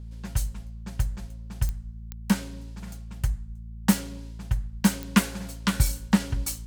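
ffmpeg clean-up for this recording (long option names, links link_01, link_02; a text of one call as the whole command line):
ffmpeg -i in.wav -af "adeclick=threshold=4,bandreject=frequency=56:width_type=h:width=4,bandreject=frequency=112:width_type=h:width=4,bandreject=frequency=168:width_type=h:width=4,bandreject=frequency=224:width_type=h:width=4" out.wav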